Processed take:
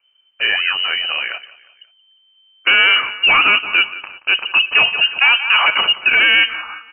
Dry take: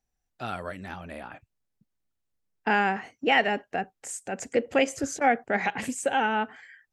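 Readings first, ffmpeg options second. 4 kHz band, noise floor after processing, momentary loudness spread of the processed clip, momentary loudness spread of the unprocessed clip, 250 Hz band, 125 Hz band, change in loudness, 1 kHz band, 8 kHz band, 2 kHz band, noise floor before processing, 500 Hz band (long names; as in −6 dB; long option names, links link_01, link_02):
+24.5 dB, −57 dBFS, 10 LU, 16 LU, −7.5 dB, can't be measured, +14.5 dB, +4.5 dB, below −40 dB, +16.5 dB, −81 dBFS, −4.5 dB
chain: -filter_complex "[0:a]aecho=1:1:177|354|531:0.112|0.0471|0.0198,acrossover=split=1700[link_01][link_02];[link_02]asoftclip=type=tanh:threshold=-31.5dB[link_03];[link_01][link_03]amix=inputs=2:normalize=0,lowshelf=frequency=260:gain=5,apsyclip=24.5dB,lowpass=frequency=2600:width_type=q:width=0.5098,lowpass=frequency=2600:width_type=q:width=0.6013,lowpass=frequency=2600:width_type=q:width=0.9,lowpass=frequency=2600:width_type=q:width=2.563,afreqshift=-3100,volume=-7.5dB"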